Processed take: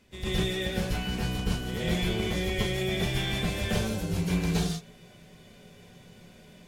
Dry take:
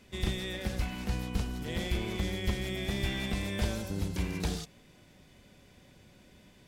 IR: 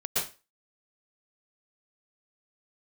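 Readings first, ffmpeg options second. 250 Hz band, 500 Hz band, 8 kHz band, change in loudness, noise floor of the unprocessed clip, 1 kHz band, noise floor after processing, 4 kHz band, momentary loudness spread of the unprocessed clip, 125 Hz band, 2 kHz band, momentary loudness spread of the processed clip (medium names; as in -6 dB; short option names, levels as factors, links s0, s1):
+5.5 dB, +6.5 dB, +5.0 dB, +5.0 dB, -59 dBFS, +5.5 dB, -53 dBFS, +6.0 dB, 3 LU, +4.5 dB, +5.0 dB, 3 LU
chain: -filter_complex "[1:a]atrim=start_sample=2205,afade=t=out:st=0.21:d=0.01,atrim=end_sample=9702[s0];[0:a][s0]afir=irnorm=-1:irlink=0,volume=0.794"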